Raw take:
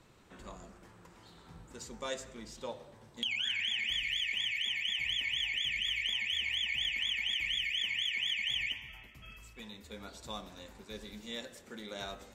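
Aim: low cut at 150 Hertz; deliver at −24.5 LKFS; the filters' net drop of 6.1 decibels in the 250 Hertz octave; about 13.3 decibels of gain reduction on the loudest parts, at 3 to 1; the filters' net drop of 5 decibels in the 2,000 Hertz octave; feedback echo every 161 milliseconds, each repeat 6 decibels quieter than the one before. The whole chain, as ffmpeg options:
ffmpeg -i in.wav -af "highpass=150,equalizer=frequency=250:width_type=o:gain=-6.5,equalizer=frequency=2000:width_type=o:gain=-6,acompressor=threshold=-52dB:ratio=3,aecho=1:1:161|322|483|644|805|966:0.501|0.251|0.125|0.0626|0.0313|0.0157,volume=24dB" out.wav

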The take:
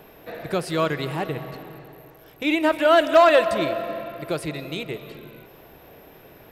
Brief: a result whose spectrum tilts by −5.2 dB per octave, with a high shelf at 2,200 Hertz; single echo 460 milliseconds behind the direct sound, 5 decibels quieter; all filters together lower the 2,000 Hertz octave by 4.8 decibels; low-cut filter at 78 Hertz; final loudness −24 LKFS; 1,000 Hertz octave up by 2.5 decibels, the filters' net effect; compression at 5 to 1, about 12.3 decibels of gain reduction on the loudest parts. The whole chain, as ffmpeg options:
ffmpeg -i in.wav -af "highpass=78,equalizer=frequency=1000:width_type=o:gain=6.5,equalizer=frequency=2000:width_type=o:gain=-4.5,highshelf=frequency=2200:gain=-8,acompressor=threshold=-22dB:ratio=5,aecho=1:1:460:0.562,volume=3.5dB" out.wav

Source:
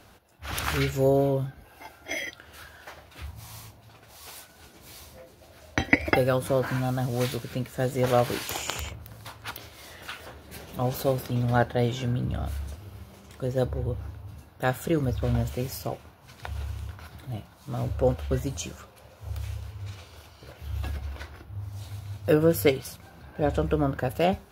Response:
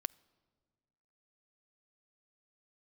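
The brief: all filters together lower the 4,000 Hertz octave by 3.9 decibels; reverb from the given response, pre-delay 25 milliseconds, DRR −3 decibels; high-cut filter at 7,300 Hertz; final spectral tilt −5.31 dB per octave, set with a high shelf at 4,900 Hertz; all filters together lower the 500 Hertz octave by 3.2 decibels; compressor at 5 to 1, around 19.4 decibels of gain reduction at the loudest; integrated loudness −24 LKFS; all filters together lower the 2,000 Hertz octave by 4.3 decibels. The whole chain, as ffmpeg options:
-filter_complex "[0:a]lowpass=7300,equalizer=frequency=500:width_type=o:gain=-3.5,equalizer=frequency=2000:width_type=o:gain=-4.5,equalizer=frequency=4000:width_type=o:gain=-5,highshelf=frequency=4900:gain=4,acompressor=threshold=-41dB:ratio=5,asplit=2[link_01][link_02];[1:a]atrim=start_sample=2205,adelay=25[link_03];[link_02][link_03]afir=irnorm=-1:irlink=0,volume=4.5dB[link_04];[link_01][link_04]amix=inputs=2:normalize=0,volume=16.5dB"

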